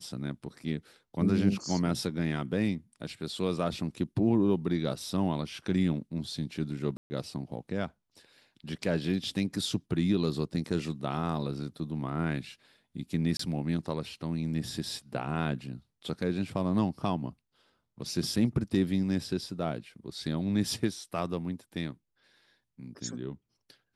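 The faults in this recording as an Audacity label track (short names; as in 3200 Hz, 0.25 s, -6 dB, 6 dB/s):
6.970000	7.100000	gap 0.13 s
13.370000	13.390000	gap 24 ms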